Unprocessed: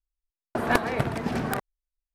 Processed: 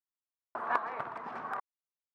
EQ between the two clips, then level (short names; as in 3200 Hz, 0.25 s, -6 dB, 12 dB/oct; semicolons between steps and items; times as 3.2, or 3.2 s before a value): band-pass 1100 Hz, Q 3.3; 0.0 dB